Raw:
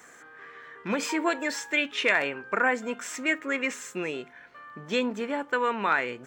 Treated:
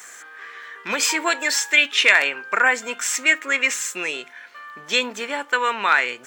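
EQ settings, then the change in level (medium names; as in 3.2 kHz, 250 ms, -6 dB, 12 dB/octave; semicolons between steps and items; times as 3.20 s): tilt EQ +4.5 dB/octave; bass shelf 79 Hz -7.5 dB; treble shelf 8.3 kHz -8.5 dB; +5.5 dB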